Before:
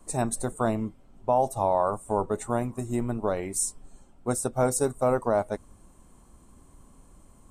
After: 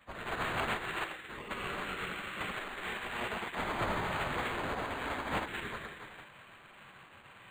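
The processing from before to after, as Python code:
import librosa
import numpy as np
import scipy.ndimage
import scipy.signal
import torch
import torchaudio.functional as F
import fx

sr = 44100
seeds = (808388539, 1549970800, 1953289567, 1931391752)

p1 = fx.tone_stack(x, sr, knobs='10-0-10')
p2 = fx.spec_paint(p1, sr, seeds[0], shape='rise', start_s=3.87, length_s=1.07, low_hz=560.0, high_hz=8700.0, level_db=-34.0)
p3 = p2 + fx.echo_multitap(p2, sr, ms=(64, 124, 221, 381), db=(-9.0, -11.5, -9.5, -8.0), dry=0)
p4 = fx.rev_gated(p3, sr, seeds[1], gate_ms=330, shape='rising', drr_db=-5.0)
p5 = fx.spec_gate(p4, sr, threshold_db=-20, keep='weak')
p6 = (np.mod(10.0 ** (33.0 / 20.0) * p5 + 1.0, 2.0) - 1.0) / 10.0 ** (33.0 / 20.0)
p7 = p5 + F.gain(torch.from_numpy(p6), -9.0).numpy()
p8 = np.interp(np.arange(len(p7)), np.arange(len(p7))[::8], p7[::8])
y = F.gain(torch.from_numpy(p8), 5.0).numpy()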